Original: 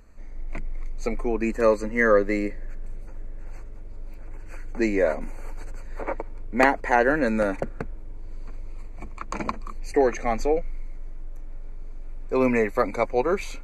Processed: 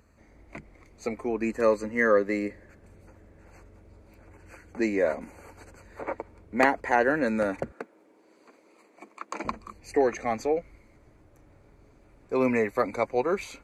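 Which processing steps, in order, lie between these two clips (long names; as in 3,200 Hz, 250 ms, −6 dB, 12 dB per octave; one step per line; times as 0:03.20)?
high-pass filter 57 Hz 24 dB per octave, from 0:07.72 270 Hz, from 0:09.45 52 Hz
level −3 dB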